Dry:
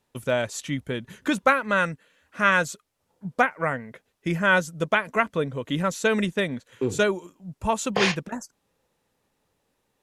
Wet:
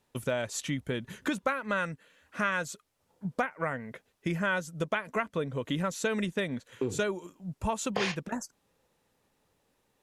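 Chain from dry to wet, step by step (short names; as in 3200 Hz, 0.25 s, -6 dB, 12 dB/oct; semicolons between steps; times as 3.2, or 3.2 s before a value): compressor 3:1, threshold -29 dBFS, peak gain reduction 12 dB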